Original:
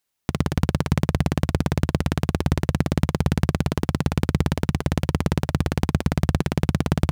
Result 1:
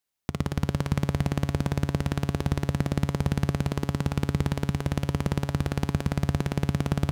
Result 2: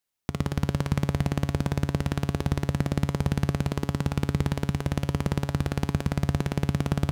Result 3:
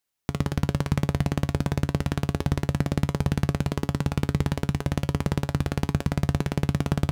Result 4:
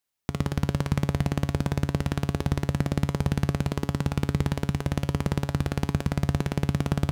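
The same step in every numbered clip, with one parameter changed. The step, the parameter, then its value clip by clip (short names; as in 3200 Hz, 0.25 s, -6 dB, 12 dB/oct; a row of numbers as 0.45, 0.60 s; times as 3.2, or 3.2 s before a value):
resonator, decay: 2, 0.85, 0.15, 0.41 s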